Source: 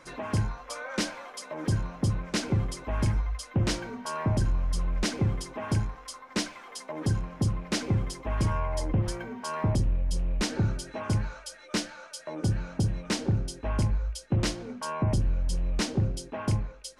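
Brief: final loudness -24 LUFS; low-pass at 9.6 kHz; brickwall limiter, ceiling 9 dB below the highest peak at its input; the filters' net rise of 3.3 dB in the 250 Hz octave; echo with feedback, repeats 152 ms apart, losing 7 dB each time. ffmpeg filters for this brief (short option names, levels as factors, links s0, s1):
-af "lowpass=9600,equalizer=f=250:t=o:g=4.5,alimiter=limit=0.0631:level=0:latency=1,aecho=1:1:152|304|456|608|760:0.447|0.201|0.0905|0.0407|0.0183,volume=2.82"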